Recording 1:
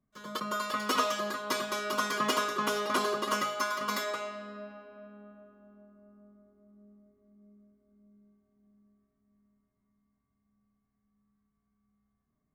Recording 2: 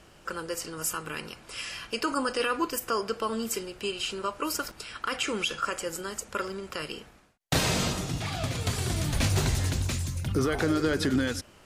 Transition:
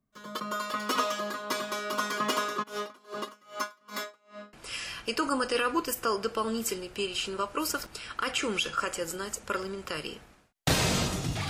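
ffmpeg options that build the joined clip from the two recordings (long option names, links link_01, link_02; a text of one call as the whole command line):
ffmpeg -i cue0.wav -i cue1.wav -filter_complex "[0:a]asplit=3[link_01][link_02][link_03];[link_01]afade=type=out:start_time=2.62:duration=0.02[link_04];[link_02]aeval=exprs='val(0)*pow(10,-32*(0.5-0.5*cos(2*PI*2.5*n/s))/20)':channel_layout=same,afade=type=in:start_time=2.62:duration=0.02,afade=type=out:start_time=4.53:duration=0.02[link_05];[link_03]afade=type=in:start_time=4.53:duration=0.02[link_06];[link_04][link_05][link_06]amix=inputs=3:normalize=0,apad=whole_dur=11.49,atrim=end=11.49,atrim=end=4.532[link_07];[1:a]atrim=start=1.378:end=8.34[link_08];[link_07][link_08]acrossfade=duration=0.004:curve1=hsin:curve2=hsin" out.wav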